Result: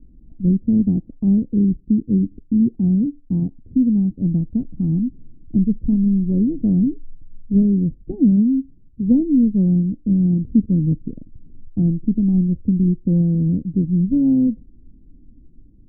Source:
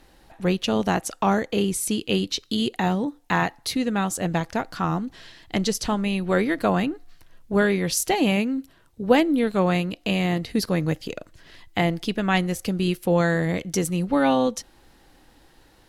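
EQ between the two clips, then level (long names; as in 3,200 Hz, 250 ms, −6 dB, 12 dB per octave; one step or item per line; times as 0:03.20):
transistor ladder low-pass 290 Hz, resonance 50%
spectral tilt −3.5 dB per octave
+4.5 dB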